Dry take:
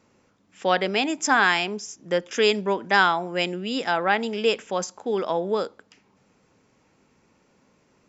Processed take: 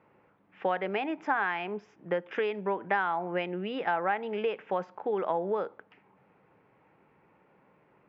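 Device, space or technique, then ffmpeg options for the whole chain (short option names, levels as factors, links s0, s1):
bass amplifier: -af "acompressor=threshold=0.0501:ratio=5,highpass=78,equalizer=f=89:t=q:w=4:g=-8,equalizer=f=240:t=q:w=4:g=-9,equalizer=f=840:t=q:w=4:g=4,lowpass=f=2400:w=0.5412,lowpass=f=2400:w=1.3066"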